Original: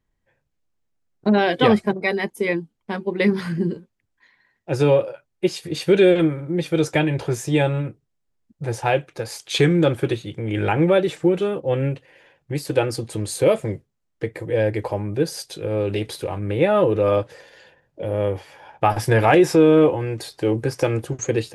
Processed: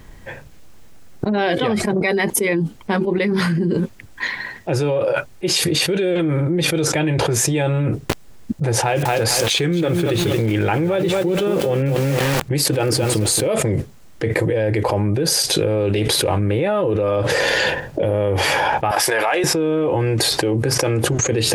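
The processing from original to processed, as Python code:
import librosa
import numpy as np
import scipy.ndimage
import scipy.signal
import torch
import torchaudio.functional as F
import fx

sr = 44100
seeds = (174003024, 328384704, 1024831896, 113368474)

y = fx.echo_crushed(x, sr, ms=225, feedback_pct=35, bits=6, wet_db=-10, at=(7.87, 13.48))
y = fx.highpass(y, sr, hz=680.0, slope=12, at=(18.91, 19.44))
y = fx.env_flatten(y, sr, amount_pct=100)
y = F.gain(torch.from_numpy(y), -7.0).numpy()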